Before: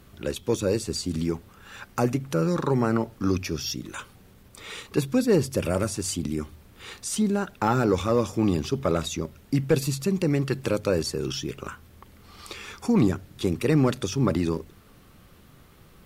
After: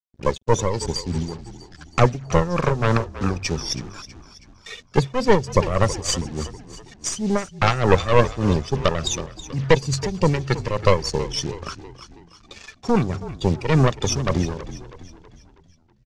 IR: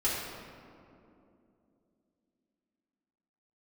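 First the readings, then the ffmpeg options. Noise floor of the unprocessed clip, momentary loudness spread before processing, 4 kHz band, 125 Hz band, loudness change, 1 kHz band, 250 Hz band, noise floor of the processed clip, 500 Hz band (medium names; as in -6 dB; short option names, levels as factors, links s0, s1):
-53 dBFS, 16 LU, +6.0 dB, +5.5 dB, +4.0 dB, +8.0 dB, -0.5 dB, -54 dBFS, +4.0 dB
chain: -filter_complex "[0:a]afftdn=nr=23:nf=-35,aecho=1:1:1.7:0.56,acrossover=split=290[s0][s1];[s0]crystalizer=i=7.5:c=0[s2];[s1]aeval=exprs='0.335*(cos(1*acos(clip(val(0)/0.335,-1,1)))-cos(1*PI/2))+0.0944*(cos(6*acos(clip(val(0)/0.335,-1,1)))-cos(6*PI/2))':c=same[s3];[s2][s3]amix=inputs=2:normalize=0,acrusher=bits=6:mix=0:aa=0.5,tremolo=f=3.4:d=0.71,lowpass=f=6200:t=q:w=2,asplit=6[s4][s5][s6][s7][s8][s9];[s5]adelay=323,afreqshift=-43,volume=0.188[s10];[s6]adelay=646,afreqshift=-86,volume=0.0944[s11];[s7]adelay=969,afreqshift=-129,volume=0.0473[s12];[s8]adelay=1292,afreqshift=-172,volume=0.0234[s13];[s9]adelay=1615,afreqshift=-215,volume=0.0117[s14];[s4][s10][s11][s12][s13][s14]amix=inputs=6:normalize=0,volume=1.88"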